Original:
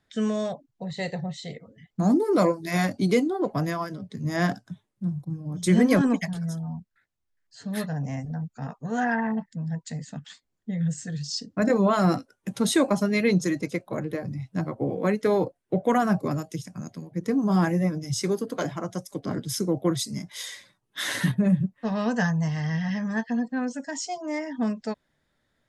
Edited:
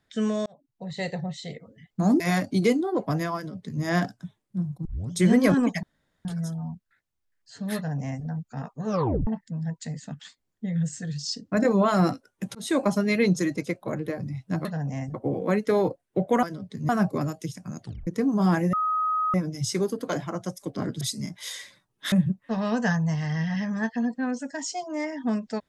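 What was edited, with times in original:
0.46–0.98 fade in
2.2–2.67 cut
3.83–4.29 copy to 15.99
5.32 tape start 0.27 s
6.3 insert room tone 0.42 s
7.81–8.3 copy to 14.7
8.91 tape stop 0.41 s
12.6–12.88 fade in
16.92 tape stop 0.25 s
17.83 add tone 1260 Hz -22 dBFS 0.61 s
19.5–19.94 cut
21.05–21.46 cut

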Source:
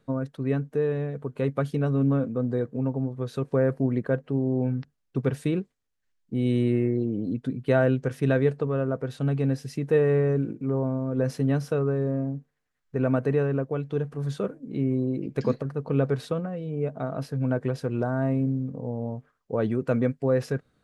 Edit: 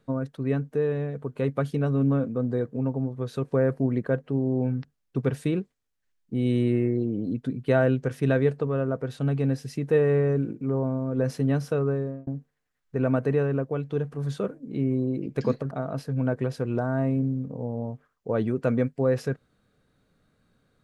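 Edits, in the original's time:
11.93–12.27 fade out linear
15.71–16.95 cut

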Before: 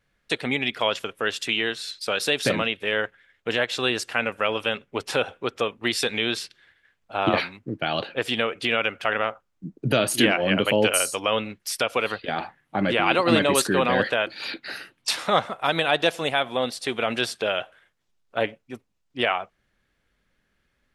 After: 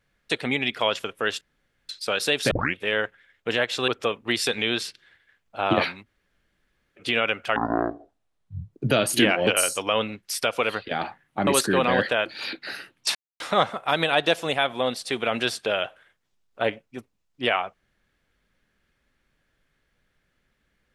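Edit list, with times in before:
1.41–1.89 room tone
2.51 tape start 0.25 s
3.88–5.44 cut
7.61–8.55 room tone, crossfade 0.06 s
9.12–9.74 speed 53%
10.48–10.84 cut
12.84–13.48 cut
15.16 insert silence 0.25 s

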